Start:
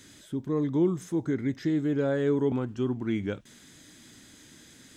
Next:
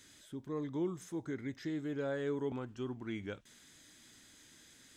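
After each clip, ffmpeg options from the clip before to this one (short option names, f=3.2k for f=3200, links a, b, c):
-af "equalizer=f=180:w=0.41:g=-7,volume=-6dB"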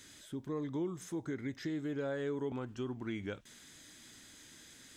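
-af "acompressor=threshold=-41dB:ratio=2,volume=4dB"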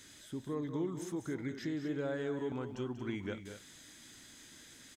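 -af "aecho=1:1:189.5|230.3:0.282|0.282"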